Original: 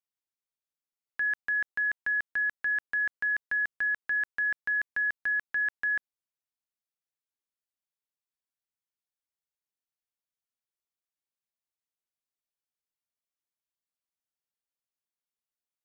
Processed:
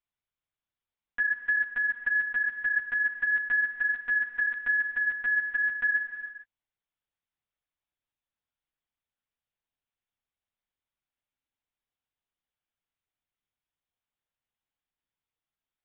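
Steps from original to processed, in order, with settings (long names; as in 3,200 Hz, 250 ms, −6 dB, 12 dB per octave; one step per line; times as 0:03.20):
linear-prediction vocoder at 8 kHz pitch kept
downward compressor 3 to 1, threshold −29 dBFS, peak gain reduction 4.5 dB
reverb whose tail is shaped and stops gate 480 ms flat, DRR 7.5 dB
level +4 dB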